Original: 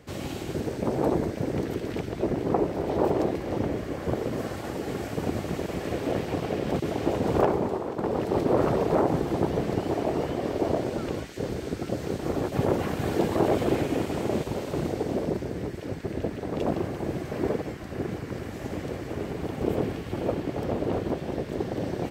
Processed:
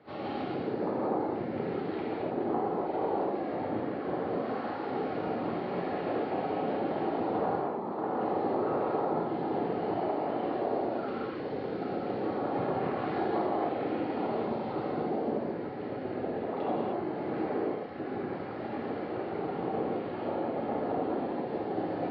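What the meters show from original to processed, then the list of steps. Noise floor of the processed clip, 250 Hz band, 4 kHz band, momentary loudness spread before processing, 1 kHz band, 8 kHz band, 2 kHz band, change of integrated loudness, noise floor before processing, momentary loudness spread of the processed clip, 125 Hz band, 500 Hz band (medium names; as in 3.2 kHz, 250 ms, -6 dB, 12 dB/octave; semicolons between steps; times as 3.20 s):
-37 dBFS, -5.0 dB, -8.5 dB, 9 LU, +0.5 dB, under -35 dB, -4.0 dB, -4.0 dB, -37 dBFS, 5 LU, -11.5 dB, -4.0 dB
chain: distance through air 410 m; on a send: reverse echo 35 ms -15.5 dB; on the sum: reverb removal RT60 1.8 s; cabinet simulation 230–5000 Hz, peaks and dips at 800 Hz +8 dB, 1.3 kHz +4 dB, 4.4 kHz +9 dB; compression, threshold -29 dBFS, peak gain reduction 12.5 dB; gated-style reverb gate 330 ms flat, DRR -7.5 dB; trim -4.5 dB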